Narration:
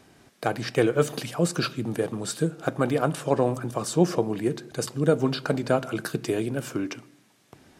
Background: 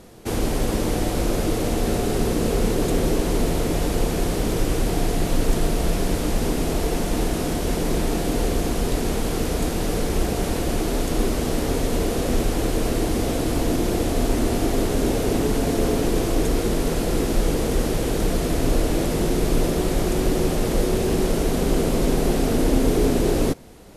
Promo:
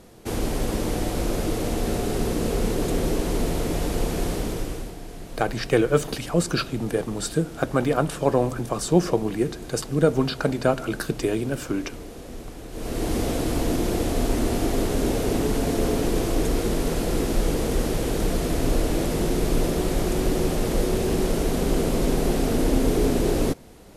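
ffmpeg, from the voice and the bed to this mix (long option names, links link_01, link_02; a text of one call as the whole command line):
ffmpeg -i stem1.wav -i stem2.wav -filter_complex "[0:a]adelay=4950,volume=2dB[link_01];[1:a]volume=11.5dB,afade=type=out:start_time=4.3:duration=0.66:silence=0.211349,afade=type=in:start_time=12.7:duration=0.43:silence=0.188365[link_02];[link_01][link_02]amix=inputs=2:normalize=0" out.wav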